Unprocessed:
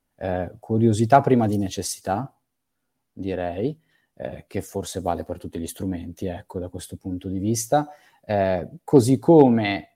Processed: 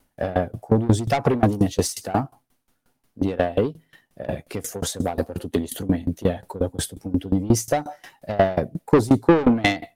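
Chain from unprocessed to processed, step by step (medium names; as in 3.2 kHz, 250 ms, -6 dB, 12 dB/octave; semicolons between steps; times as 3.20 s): in parallel at +2.5 dB: compression, threshold -30 dBFS, peak gain reduction 20.5 dB; on the sum: saturation -15.5 dBFS, distortion -8 dB; sawtooth tremolo in dB decaying 5.6 Hz, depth 22 dB; trim +9 dB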